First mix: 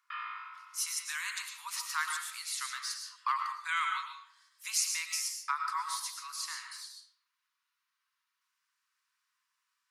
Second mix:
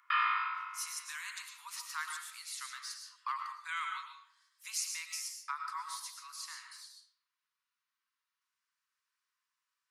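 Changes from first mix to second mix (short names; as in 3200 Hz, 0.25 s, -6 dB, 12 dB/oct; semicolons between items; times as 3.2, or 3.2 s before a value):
speech -6.0 dB; background +10.5 dB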